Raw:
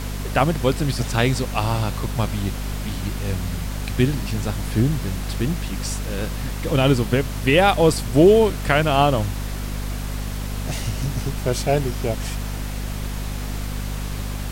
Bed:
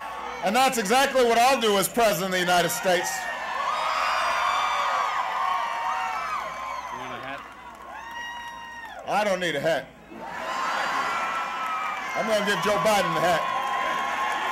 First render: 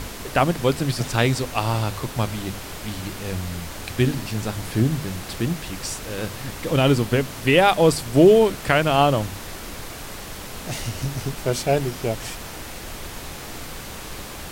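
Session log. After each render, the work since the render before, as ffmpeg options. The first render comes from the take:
-af "bandreject=f=50:t=h:w=6,bandreject=f=100:t=h:w=6,bandreject=f=150:t=h:w=6,bandreject=f=200:t=h:w=6,bandreject=f=250:t=h:w=6"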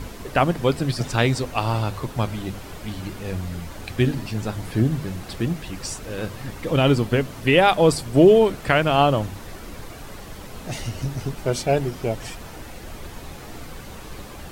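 -af "afftdn=nr=8:nf=-36"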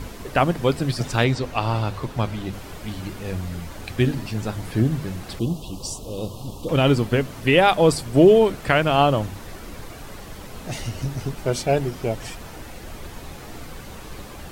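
-filter_complex "[0:a]asettb=1/sr,asplit=3[s0][s1][s2];[s0]atrim=end=1.244[s3];[s1]atrim=start=1.24:end=2.53,asetpts=PTS-STARTPTS,afade=t=in:d=0.004:c=qsin,afade=t=out:st=1.286:d=0.004:c=qsin,acrossover=split=5900[s4][s5];[s5]acompressor=threshold=0.00251:ratio=4:attack=1:release=60[s6];[s4][s6]amix=inputs=2:normalize=0[s7];[s2]atrim=start=2.526[s8];[s3][s7]acrossfade=d=0.004:c1=hsin:c2=qsin[s9];[s9][s8]acrossfade=d=0.004:c1=qsin:c2=hsin,asettb=1/sr,asplit=3[s10][s11][s12];[s10]atrim=end=5.394[s13];[s11]atrim=start=5.39:end=6.69,asetpts=PTS-STARTPTS,afade=t=in:d=0.004:c=qsin,afade=t=out:st=1.296:d=0.004:c=qsin,asuperstop=centerf=1800:order=8:qfactor=1[s14];[s12]atrim=start=6.686[s15];[s13][s14]acrossfade=d=0.004:c1=hsin:c2=qsin[s16];[s16][s15]acrossfade=d=0.004:c1=qsin:c2=hsin"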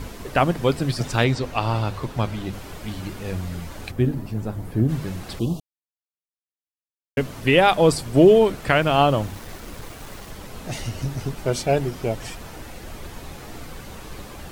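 -filter_complex "[0:a]asplit=3[s0][s1][s2];[s0]afade=t=out:st=3.9:d=0.02[s3];[s1]equalizer=f=4200:w=0.31:g=-13,afade=t=in:st=3.9:d=0.02,afade=t=out:st=4.88:d=0.02[s4];[s2]afade=t=in:st=4.88:d=0.02[s5];[s3][s4][s5]amix=inputs=3:normalize=0,asettb=1/sr,asplit=3[s6][s7][s8];[s6]atrim=end=8.824[s9];[s7]atrim=start=8.82:end=10.32,asetpts=PTS-STARTPTS,afade=t=in:d=0.004:c=qsin,afade=t=out:st=1.496:d=0.004:c=qsin,aeval=exprs='val(0)*gte(abs(val(0)),0.0106)':c=same[s10];[s8]atrim=start=10.316[s11];[s9][s10]acrossfade=d=0.004:c1=hsin:c2=qsin[s12];[s12][s11]acrossfade=d=0.004:c1=qsin:c2=hsin,asplit=3[s13][s14][s15];[s13]atrim=end=5.6,asetpts=PTS-STARTPTS,afade=t=out:st=5.596:d=0.004:c=hsin[s16];[s14]atrim=start=5.6:end=7.17,asetpts=PTS-STARTPTS,volume=0[s17];[s15]atrim=start=7.17,asetpts=PTS-STARTPTS,afade=t=in:d=0.004:c=hsin[s18];[s16][s17][s18]concat=n=3:v=0:a=1"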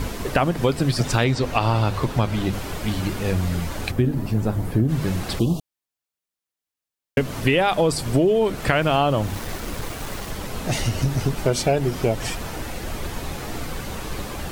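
-filter_complex "[0:a]asplit=2[s0][s1];[s1]alimiter=limit=0.266:level=0:latency=1:release=18,volume=1.26[s2];[s0][s2]amix=inputs=2:normalize=0,acompressor=threshold=0.158:ratio=5"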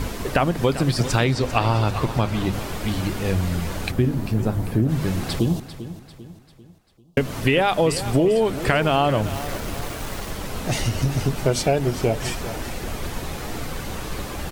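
-af "aecho=1:1:395|790|1185|1580:0.211|0.0951|0.0428|0.0193"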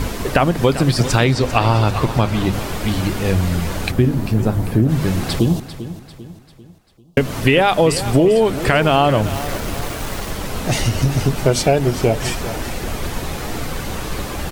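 -af "volume=1.78,alimiter=limit=0.794:level=0:latency=1"

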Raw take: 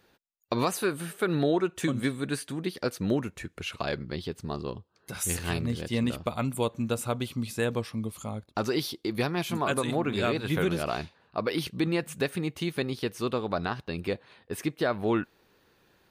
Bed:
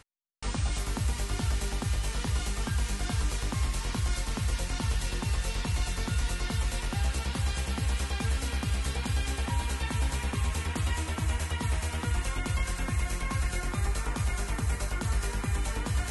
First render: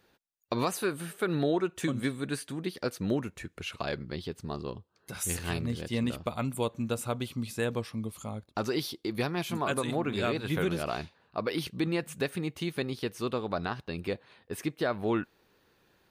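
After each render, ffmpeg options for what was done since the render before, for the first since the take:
-af "volume=0.75"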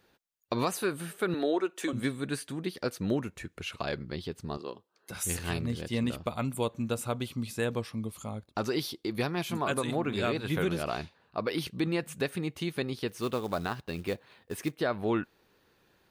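-filter_complex "[0:a]asettb=1/sr,asplit=3[s0][s1][s2];[s0]atrim=end=1.344[s3];[s1]atrim=start=1.34:end=1.93,asetpts=PTS-STARTPTS,afade=t=in:d=0.004:c=qsin,afade=t=out:st=0.586:d=0.004:c=qsin,highpass=f=270:w=0.5412,highpass=f=270:w=1.3066[s4];[s2]atrim=start=1.926[s5];[s3][s4]acrossfade=d=0.004:c1=hsin:c2=qsin[s6];[s6][s5]acrossfade=d=0.004:c1=qsin:c2=hsin,asettb=1/sr,asplit=3[s7][s8][s9];[s7]atrim=end=4.574[s10];[s8]atrim=start=4.57:end=5.11,asetpts=PTS-STARTPTS,afade=t=in:d=0.004:c=qsin,afade=t=out:st=0.536:d=0.004:c=qsin,highpass=310[s11];[s9]atrim=start=5.106[s12];[s10][s11]acrossfade=d=0.004:c1=hsin:c2=qsin[s13];[s13][s12]acrossfade=d=0.004:c1=qsin:c2=hsin,asettb=1/sr,asplit=3[s14][s15][s16];[s14]atrim=end=13.084[s17];[s15]atrim=start=13.08:end=14.75,asetpts=PTS-STARTPTS,afade=t=in:d=0.004:c=qsin,afade=t=out:st=1.666:d=0.004:c=qsin,acrusher=bits=5:mode=log:mix=0:aa=0.000001[s18];[s16]atrim=start=14.746[s19];[s17][s18]acrossfade=d=0.004:c1=hsin:c2=qsin[s20];[s20][s19]acrossfade=d=0.004:c1=qsin:c2=hsin"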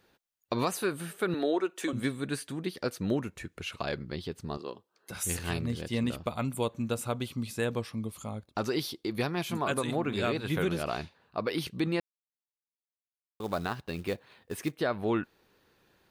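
-filter_complex "[0:a]asplit=3[s0][s1][s2];[s0]atrim=end=12,asetpts=PTS-STARTPTS,afade=t=out:st=11.996:d=0.004:c=hsin[s3];[s1]atrim=start=12:end=13.4,asetpts=PTS-STARTPTS,volume=0[s4];[s2]atrim=start=13.4,asetpts=PTS-STARTPTS,afade=t=in:d=0.004:c=hsin[s5];[s3][s4][s5]concat=n=3:v=0:a=1"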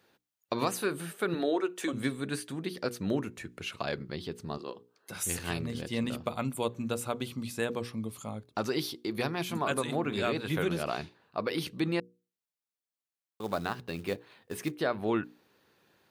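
-af "highpass=99,bandreject=f=60:t=h:w=6,bandreject=f=120:t=h:w=6,bandreject=f=180:t=h:w=6,bandreject=f=240:t=h:w=6,bandreject=f=300:t=h:w=6,bandreject=f=360:t=h:w=6,bandreject=f=420:t=h:w=6,bandreject=f=480:t=h:w=6"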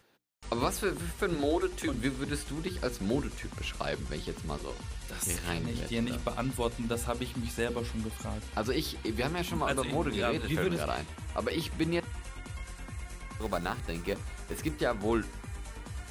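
-filter_complex "[1:a]volume=0.266[s0];[0:a][s0]amix=inputs=2:normalize=0"

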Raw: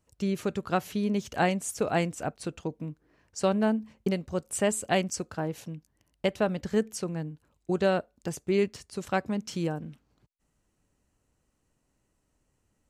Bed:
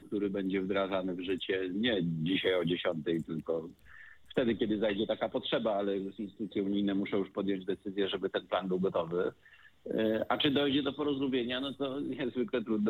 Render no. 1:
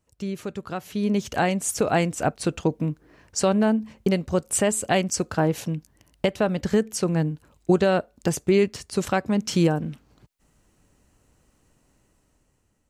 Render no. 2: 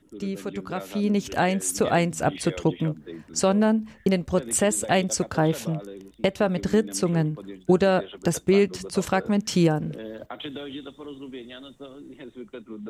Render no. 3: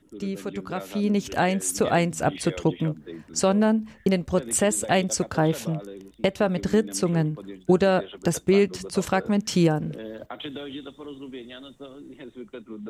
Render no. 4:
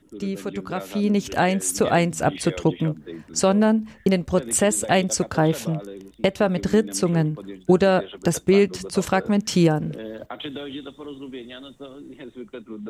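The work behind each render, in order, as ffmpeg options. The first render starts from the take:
-af "alimiter=limit=0.0891:level=0:latency=1:release=432,dynaudnorm=f=330:g=7:m=3.76"
-filter_complex "[1:a]volume=0.447[s0];[0:a][s0]amix=inputs=2:normalize=0"
-af anull
-af "volume=1.33"

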